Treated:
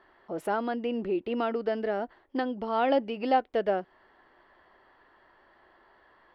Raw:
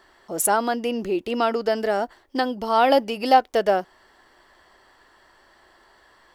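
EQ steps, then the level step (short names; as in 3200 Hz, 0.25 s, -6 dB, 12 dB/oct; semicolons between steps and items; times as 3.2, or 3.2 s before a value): air absorption 400 m; low shelf 120 Hz -6.5 dB; dynamic EQ 950 Hz, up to -6 dB, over -33 dBFS, Q 0.78; -2.0 dB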